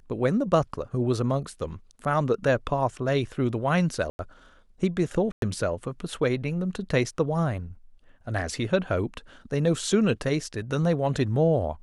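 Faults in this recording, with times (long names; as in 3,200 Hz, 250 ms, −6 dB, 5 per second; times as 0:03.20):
0:04.10–0:04.19: drop-out 91 ms
0:05.32–0:05.42: drop-out 102 ms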